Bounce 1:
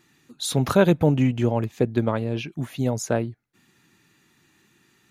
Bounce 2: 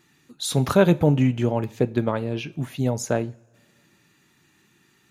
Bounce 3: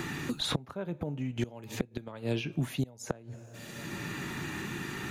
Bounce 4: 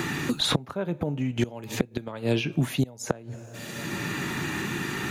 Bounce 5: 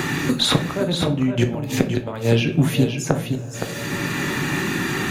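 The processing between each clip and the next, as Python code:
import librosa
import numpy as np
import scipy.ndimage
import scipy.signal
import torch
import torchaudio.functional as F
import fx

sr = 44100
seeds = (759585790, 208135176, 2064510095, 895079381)

y1 = fx.rev_double_slope(x, sr, seeds[0], early_s=0.38, late_s=1.9, knee_db=-22, drr_db=14.0)
y2 = fx.gate_flip(y1, sr, shuts_db=-14.0, range_db=-25)
y2 = fx.band_squash(y2, sr, depth_pct=100)
y3 = fx.low_shelf(y2, sr, hz=64.0, db=-7.5)
y3 = y3 * 10.0 ** (7.5 / 20.0)
y4 = y3 + 10.0 ** (-7.5 / 20.0) * np.pad(y3, (int(517 * sr / 1000.0), 0))[:len(y3)]
y4 = fx.room_shoebox(y4, sr, seeds[1], volume_m3=43.0, walls='mixed', distance_m=0.3)
y4 = y4 * 10.0 ** (5.5 / 20.0)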